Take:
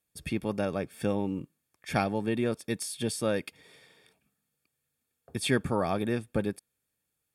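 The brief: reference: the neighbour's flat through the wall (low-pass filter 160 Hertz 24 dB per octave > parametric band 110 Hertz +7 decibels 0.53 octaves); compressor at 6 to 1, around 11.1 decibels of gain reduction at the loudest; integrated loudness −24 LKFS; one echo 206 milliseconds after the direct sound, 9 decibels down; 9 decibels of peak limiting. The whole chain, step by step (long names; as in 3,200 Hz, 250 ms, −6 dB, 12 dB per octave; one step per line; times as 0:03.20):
downward compressor 6 to 1, threshold −33 dBFS
brickwall limiter −30.5 dBFS
low-pass filter 160 Hz 24 dB per octave
parametric band 110 Hz +7 dB 0.53 octaves
single-tap delay 206 ms −9 dB
level +24 dB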